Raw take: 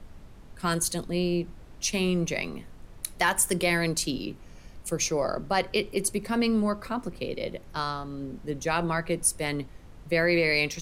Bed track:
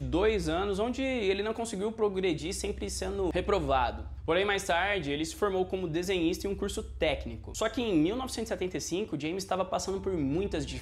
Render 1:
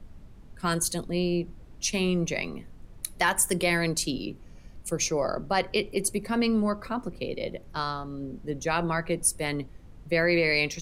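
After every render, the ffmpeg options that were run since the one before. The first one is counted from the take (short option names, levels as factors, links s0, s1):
-af "afftdn=nr=6:nf=-49"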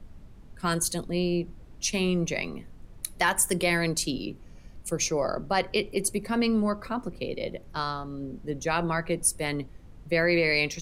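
-af anull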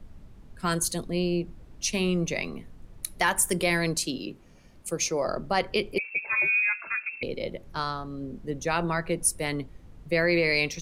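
-filter_complex "[0:a]asettb=1/sr,asplit=3[s0][s1][s2];[s0]atrim=end=3.984[s3];[s1]atrim=start=3.98:end=5.27,asetpts=PTS-STARTPTS,afade=t=in:d=0.004:c=qsin,afade=t=out:st=1.286:d=0.004:c=qsin,lowshelf=f=110:g=-11.5[s4];[s2]atrim=start=5.266[s5];[s3][s4]acrossfade=d=0.004:c1=hsin:c2=qsin[s6];[s6][s5]acrossfade=d=0.004:c1=qsin:c2=hsin,asettb=1/sr,asplit=3[s7][s8][s9];[s7]atrim=end=5.984[s10];[s8]atrim=start=5.98:end=7.23,asetpts=PTS-STARTPTS,afade=t=in:d=0.004:c=qsin,afade=t=out:st=1.246:d=0.004:c=qsin,lowpass=f=2300:t=q:w=0.5098,lowpass=f=2300:t=q:w=0.6013,lowpass=f=2300:t=q:w=0.9,lowpass=f=2300:t=q:w=2.563,afreqshift=-2700[s11];[s9]atrim=start=7.226[s12];[s10][s11]acrossfade=d=0.004:c1=hsin:c2=qsin[s13];[s13][s12]acrossfade=d=0.004:c1=qsin:c2=hsin"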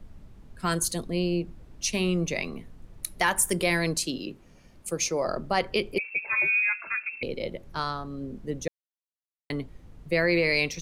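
-filter_complex "[0:a]asplit=3[s0][s1][s2];[s0]atrim=end=8.68,asetpts=PTS-STARTPTS,afade=t=out:st=8.676:d=0.004:c=hsin[s3];[s1]atrim=start=8.68:end=9.5,asetpts=PTS-STARTPTS,volume=0[s4];[s2]atrim=start=9.5,asetpts=PTS-STARTPTS,afade=t=in:d=0.004:c=hsin[s5];[s3][s4][s5]concat=n=3:v=0:a=1"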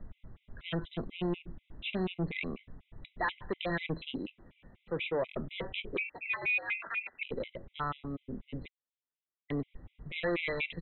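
-af "aresample=8000,asoftclip=type=tanh:threshold=0.0501,aresample=44100,afftfilt=real='re*gt(sin(2*PI*4.1*pts/sr)*(1-2*mod(floor(b*sr/1024/2000),2)),0)':imag='im*gt(sin(2*PI*4.1*pts/sr)*(1-2*mod(floor(b*sr/1024/2000),2)),0)':win_size=1024:overlap=0.75"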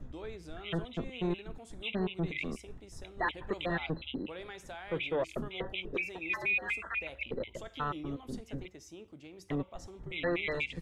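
-filter_complex "[1:a]volume=0.133[s0];[0:a][s0]amix=inputs=2:normalize=0"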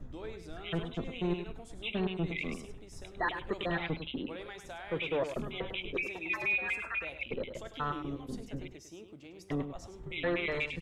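-af "aecho=1:1:102:0.355"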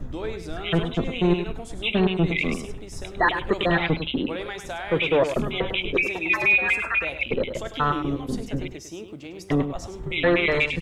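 -af "volume=3.98"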